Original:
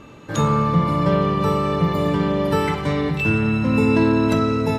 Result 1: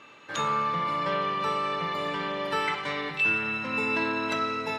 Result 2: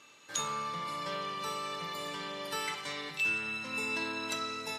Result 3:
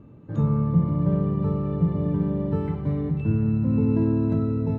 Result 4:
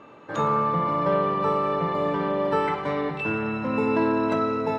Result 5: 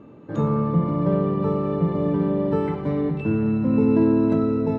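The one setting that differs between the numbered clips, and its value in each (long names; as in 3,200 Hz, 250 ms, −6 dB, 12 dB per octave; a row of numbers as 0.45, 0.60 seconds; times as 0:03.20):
resonant band-pass, frequency: 2,400, 6,900, 110, 870, 280 Hertz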